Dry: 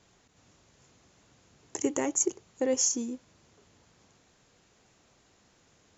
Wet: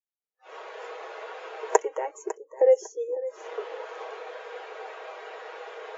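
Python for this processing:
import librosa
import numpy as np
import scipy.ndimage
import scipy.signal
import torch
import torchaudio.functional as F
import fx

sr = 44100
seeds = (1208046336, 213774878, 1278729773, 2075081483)

p1 = fx.recorder_agc(x, sr, target_db=-17.5, rise_db_per_s=54.0, max_gain_db=30)
p2 = scipy.signal.sosfilt(scipy.signal.ellip(4, 1.0, 40, 410.0, 'highpass', fs=sr, output='sos'), p1)
p3 = p2 + fx.echo_feedback(p2, sr, ms=551, feedback_pct=44, wet_db=-10.0, dry=0)
p4 = fx.noise_reduce_blind(p3, sr, reduce_db=27)
p5 = scipy.signal.sosfilt(scipy.signal.butter(2, 2800.0, 'lowpass', fs=sr, output='sos'), p4)
p6 = p5 + 0.43 * np.pad(p5, (int(6.3 * sr / 1000.0), 0))[:len(p5)]
p7 = fx.spectral_expand(p6, sr, expansion=1.5)
y = p7 * librosa.db_to_amplitude(1.5)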